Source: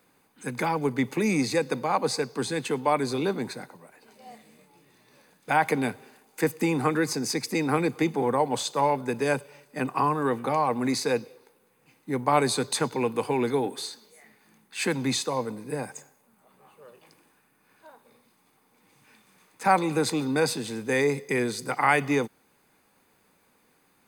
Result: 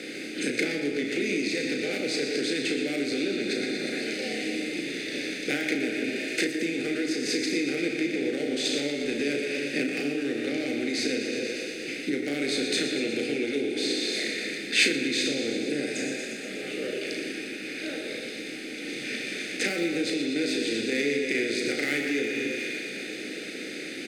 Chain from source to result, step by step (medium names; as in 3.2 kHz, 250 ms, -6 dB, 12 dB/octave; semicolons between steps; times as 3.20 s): spectral levelling over time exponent 0.6; low-pass 2.8 kHz 12 dB/octave; peaking EQ 310 Hz +10.5 dB 0.99 oct; in parallel at -6 dB: saturation -23 dBFS, distortion -5 dB; on the sum: thinning echo 119 ms, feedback 67%, high-pass 680 Hz, level -7.5 dB; on a send at -4 dB: reverberation, pre-delay 25 ms; on the sum: compression 6:1, threshold -23 dBFS, peak gain reduction 15 dB; Butterworth band-stop 1 kHz, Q 0.65; tilt EQ +4.5 dB/octave; doubling 35 ms -6 dB; trim +3.5 dB